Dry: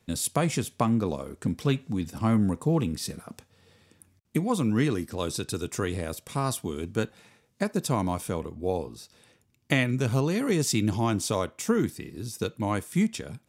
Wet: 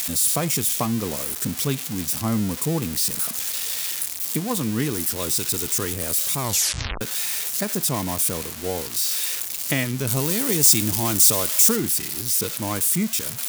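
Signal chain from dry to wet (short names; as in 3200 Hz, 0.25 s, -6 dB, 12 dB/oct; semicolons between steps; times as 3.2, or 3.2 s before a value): switching spikes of -16.5 dBFS; 6.39 tape stop 0.62 s; 10.07–11.76 high shelf 4200 Hz +8.5 dB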